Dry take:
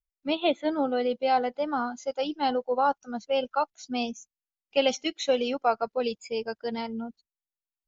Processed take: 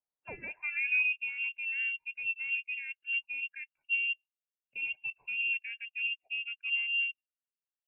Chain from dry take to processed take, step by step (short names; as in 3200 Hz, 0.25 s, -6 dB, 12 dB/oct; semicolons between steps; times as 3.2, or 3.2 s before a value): limiter -22 dBFS, peak gain reduction 10.5 dB; band-pass sweep 2300 Hz -> 230 Hz, 0.21–1.35; inverted band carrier 3000 Hz; gain +4 dB